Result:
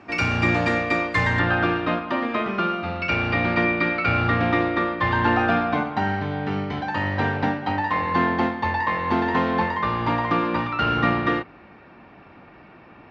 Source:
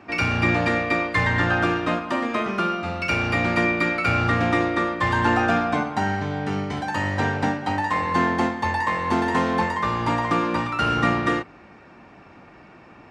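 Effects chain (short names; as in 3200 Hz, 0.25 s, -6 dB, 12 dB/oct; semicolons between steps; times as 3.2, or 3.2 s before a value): LPF 8600 Hz 24 dB/oct, from 1.39 s 4300 Hz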